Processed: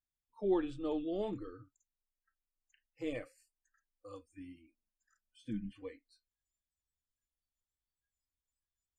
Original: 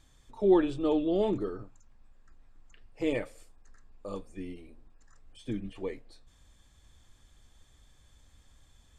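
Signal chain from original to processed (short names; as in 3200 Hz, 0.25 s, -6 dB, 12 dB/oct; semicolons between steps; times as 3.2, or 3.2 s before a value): 4.33–5.84 small resonant body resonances 210/620/910/1500 Hz, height 10 dB, ringing for 85 ms; spectral noise reduction 29 dB; gain -9 dB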